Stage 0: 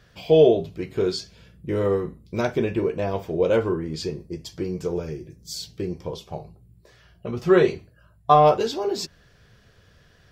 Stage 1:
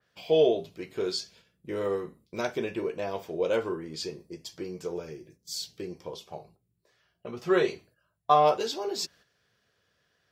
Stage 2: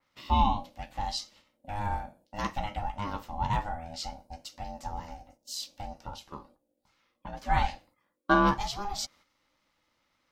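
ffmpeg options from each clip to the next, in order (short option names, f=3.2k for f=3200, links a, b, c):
-af "highpass=f=390:p=1,agate=range=-8dB:threshold=-52dB:ratio=16:detection=peak,adynamicequalizer=threshold=0.0112:dfrequency=3000:dqfactor=0.7:tfrequency=3000:tqfactor=0.7:attack=5:release=100:ratio=0.375:range=2:mode=boostabove:tftype=highshelf,volume=-4.5dB"
-af "aeval=exprs='val(0)*sin(2*PI*410*n/s)':c=same,volume=1dB"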